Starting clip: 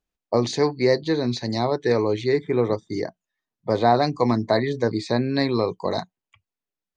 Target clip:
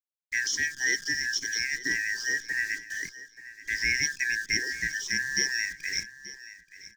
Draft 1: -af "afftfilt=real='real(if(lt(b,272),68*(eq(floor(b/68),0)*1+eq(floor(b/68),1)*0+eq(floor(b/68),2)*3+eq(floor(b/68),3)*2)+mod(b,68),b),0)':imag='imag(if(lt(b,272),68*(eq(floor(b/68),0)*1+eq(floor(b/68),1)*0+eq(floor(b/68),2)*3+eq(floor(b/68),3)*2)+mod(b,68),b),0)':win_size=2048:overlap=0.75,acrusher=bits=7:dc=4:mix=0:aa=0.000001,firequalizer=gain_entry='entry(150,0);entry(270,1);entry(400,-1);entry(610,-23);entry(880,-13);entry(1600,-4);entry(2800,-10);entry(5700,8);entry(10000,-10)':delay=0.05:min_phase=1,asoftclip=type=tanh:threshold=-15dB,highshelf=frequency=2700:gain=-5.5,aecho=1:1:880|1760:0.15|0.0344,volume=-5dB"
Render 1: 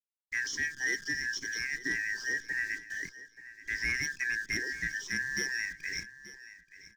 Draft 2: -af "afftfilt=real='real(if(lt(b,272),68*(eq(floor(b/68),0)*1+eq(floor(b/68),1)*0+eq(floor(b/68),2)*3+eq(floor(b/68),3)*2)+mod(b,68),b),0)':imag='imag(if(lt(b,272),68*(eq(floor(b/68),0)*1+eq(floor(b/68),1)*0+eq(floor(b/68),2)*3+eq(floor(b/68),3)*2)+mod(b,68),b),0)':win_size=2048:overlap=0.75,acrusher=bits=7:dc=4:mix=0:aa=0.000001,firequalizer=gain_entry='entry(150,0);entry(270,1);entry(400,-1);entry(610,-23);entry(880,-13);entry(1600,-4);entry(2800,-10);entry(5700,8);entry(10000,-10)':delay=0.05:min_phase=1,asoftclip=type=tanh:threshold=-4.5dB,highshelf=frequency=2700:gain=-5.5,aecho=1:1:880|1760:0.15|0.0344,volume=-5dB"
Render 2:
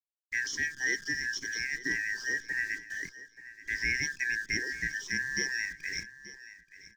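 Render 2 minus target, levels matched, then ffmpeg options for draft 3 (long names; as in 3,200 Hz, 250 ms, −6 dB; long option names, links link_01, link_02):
4,000 Hz band −3.5 dB
-af "afftfilt=real='real(if(lt(b,272),68*(eq(floor(b/68),0)*1+eq(floor(b/68),1)*0+eq(floor(b/68),2)*3+eq(floor(b/68),3)*2)+mod(b,68),b),0)':imag='imag(if(lt(b,272),68*(eq(floor(b/68),0)*1+eq(floor(b/68),1)*0+eq(floor(b/68),2)*3+eq(floor(b/68),3)*2)+mod(b,68),b),0)':win_size=2048:overlap=0.75,acrusher=bits=7:dc=4:mix=0:aa=0.000001,firequalizer=gain_entry='entry(150,0);entry(270,1);entry(400,-1);entry(610,-23);entry(880,-13);entry(1600,-4);entry(2800,-10);entry(5700,8);entry(10000,-10)':delay=0.05:min_phase=1,asoftclip=type=tanh:threshold=-4.5dB,highshelf=frequency=2700:gain=4,aecho=1:1:880|1760:0.15|0.0344,volume=-5dB"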